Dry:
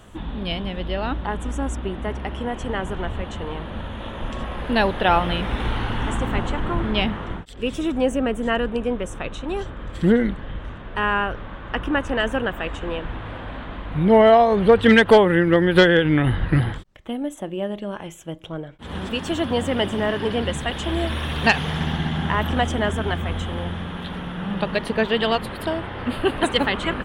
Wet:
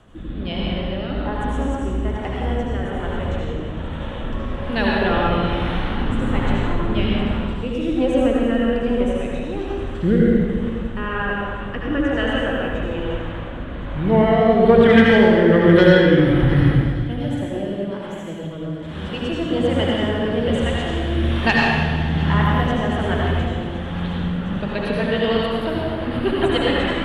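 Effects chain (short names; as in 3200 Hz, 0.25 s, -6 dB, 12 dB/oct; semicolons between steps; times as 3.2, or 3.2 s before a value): thin delay 0.355 s, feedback 84%, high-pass 2800 Hz, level -16 dB; rotary speaker horn 1.2 Hz, later 8 Hz, at 24.15; reverb RT60 1.8 s, pre-delay 67 ms, DRR -4 dB; short-mantissa float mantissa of 6-bit; high shelf 5800 Hz -11.5 dB; gain -1 dB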